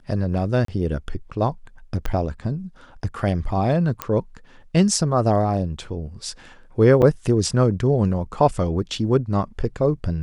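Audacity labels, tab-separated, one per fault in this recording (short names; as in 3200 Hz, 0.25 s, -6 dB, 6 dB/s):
0.650000	0.680000	gap 33 ms
2.060000	2.060000	pop -13 dBFS
4.020000	4.020000	pop -8 dBFS
7.020000	7.030000	gap 6.8 ms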